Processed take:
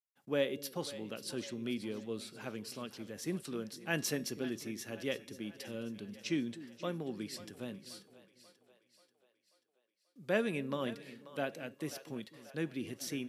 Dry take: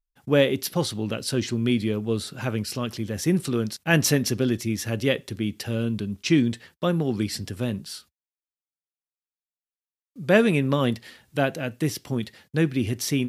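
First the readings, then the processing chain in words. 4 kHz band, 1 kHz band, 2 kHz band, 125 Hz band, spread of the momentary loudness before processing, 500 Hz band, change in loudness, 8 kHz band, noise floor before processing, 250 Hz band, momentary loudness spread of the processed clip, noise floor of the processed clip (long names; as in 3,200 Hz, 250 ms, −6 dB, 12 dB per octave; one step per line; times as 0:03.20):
−13.0 dB, −13.0 dB, −13.0 dB, −20.5 dB, 9 LU, −13.0 dB, −14.5 dB, −13.0 dB, below −85 dBFS, −15.0 dB, 11 LU, −80 dBFS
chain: high-pass filter 200 Hz 12 dB per octave
tuned comb filter 560 Hz, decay 0.61 s, mix 50%
on a send: echo with a time of its own for lows and highs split 450 Hz, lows 247 ms, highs 536 ms, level −15 dB
on the sum: level −7.5 dB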